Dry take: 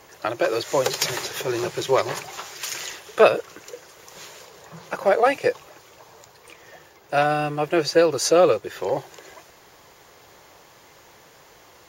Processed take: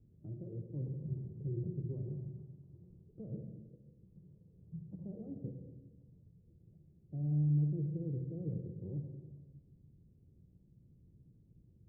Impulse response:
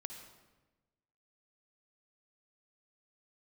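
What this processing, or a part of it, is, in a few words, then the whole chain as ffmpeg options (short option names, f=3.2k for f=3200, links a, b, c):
club heard from the street: -filter_complex "[0:a]alimiter=limit=-14dB:level=0:latency=1:release=14,lowpass=f=200:w=0.5412,lowpass=f=200:w=1.3066[a];[1:a]atrim=start_sample=2205[b];[a][b]afir=irnorm=-1:irlink=0,volume=4dB"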